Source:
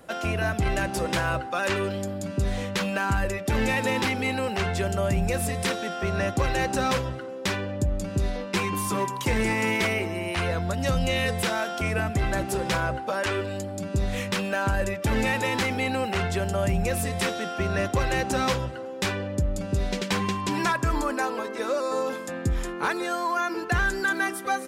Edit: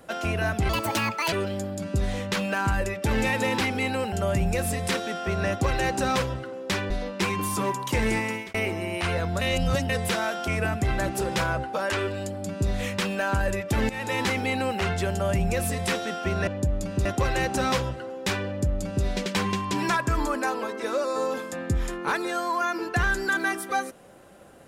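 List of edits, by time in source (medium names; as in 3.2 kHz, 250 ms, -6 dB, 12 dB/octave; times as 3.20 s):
0.69–1.76 s: speed 169%
4.56–4.88 s: delete
7.66–8.24 s: move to 17.81 s
9.47–9.88 s: fade out
10.75–11.23 s: reverse
15.23–15.52 s: fade in, from -15 dB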